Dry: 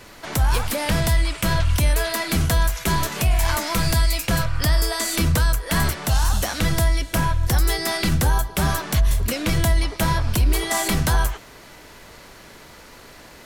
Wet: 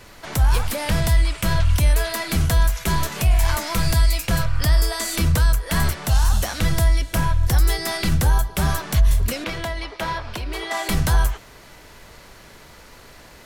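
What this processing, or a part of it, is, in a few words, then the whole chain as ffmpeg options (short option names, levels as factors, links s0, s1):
low shelf boost with a cut just above: -filter_complex "[0:a]lowshelf=f=110:g=5,equalizer=f=280:t=o:w=0.79:g=-2.5,asettb=1/sr,asplit=3[s0][s1][s2];[s0]atrim=end=9.444[s3];[s1]atrim=start=9.44:end=10.89,asetpts=PTS-STARTPTS,afade=t=in:d=0.004:c=qsin,afade=t=out:st=1.446:d=0.004:c=qsin,acrossover=split=290 4800:gain=0.178 1 0.2[s4][s5][s6];[s4][s5][s6]amix=inputs=3:normalize=0[s7];[s2]atrim=start=10.886[s8];[s3][s7]acrossfade=d=0.004:c1=hsin:c2=qsin[s9];[s9][s8]acrossfade=d=0.004:c1=qsin:c2=hsin,volume=0.841"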